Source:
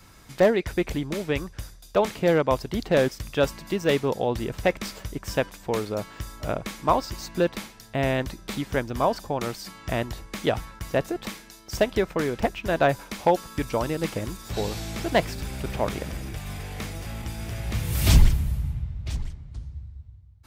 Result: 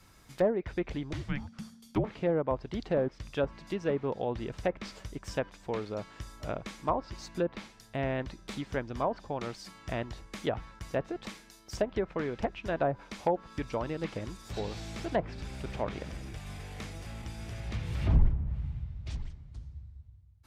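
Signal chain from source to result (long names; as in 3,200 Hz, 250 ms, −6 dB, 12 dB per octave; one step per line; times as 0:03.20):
treble cut that deepens with the level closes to 1,000 Hz, closed at −16.5 dBFS
0:01.13–0:02.04: frequency shifter −270 Hz
level −7.5 dB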